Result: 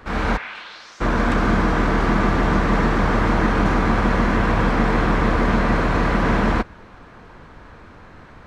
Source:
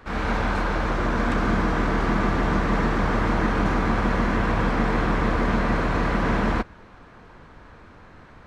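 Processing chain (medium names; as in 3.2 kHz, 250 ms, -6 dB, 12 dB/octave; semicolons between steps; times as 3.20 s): 0.36–1.00 s: band-pass filter 2 kHz -> 6.5 kHz, Q 2.4; trim +4 dB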